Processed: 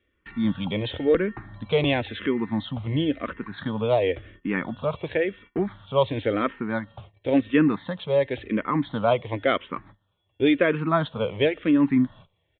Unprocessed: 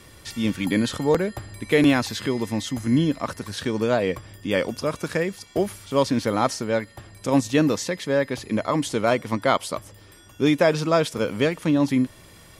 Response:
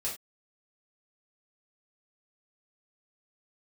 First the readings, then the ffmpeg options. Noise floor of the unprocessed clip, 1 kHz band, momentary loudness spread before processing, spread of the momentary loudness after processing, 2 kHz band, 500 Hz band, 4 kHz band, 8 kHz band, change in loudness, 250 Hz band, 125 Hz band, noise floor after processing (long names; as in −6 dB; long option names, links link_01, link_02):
−49 dBFS, −2.5 dB, 9 LU, 10 LU, −2.0 dB, −1.0 dB, −3.0 dB, below −40 dB, −1.5 dB, −1.5 dB, −2.0 dB, −72 dBFS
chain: -filter_complex "[0:a]agate=range=-22dB:threshold=-42dB:ratio=16:detection=peak,aresample=8000,aresample=44100,asplit=2[link_01][link_02];[link_02]afreqshift=-0.95[link_03];[link_01][link_03]amix=inputs=2:normalize=1,volume=1.5dB"